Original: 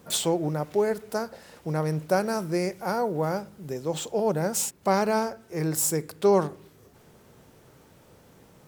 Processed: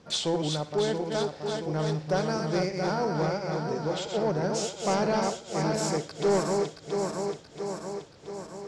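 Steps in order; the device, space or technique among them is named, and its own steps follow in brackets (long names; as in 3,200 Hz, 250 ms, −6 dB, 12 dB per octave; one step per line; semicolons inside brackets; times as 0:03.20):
feedback delay that plays each chunk backwards 339 ms, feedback 75%, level −5 dB
overdriven synthesiser ladder filter (soft clipping −15 dBFS, distortion −18 dB; transistor ladder low-pass 6,300 Hz, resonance 35%)
0:02.94–0:04.64: Bessel low-pass filter 9,100 Hz
feedback echo with a high-pass in the loop 60 ms, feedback 50%, high-pass 1,100 Hz, level −15 dB
level +5.5 dB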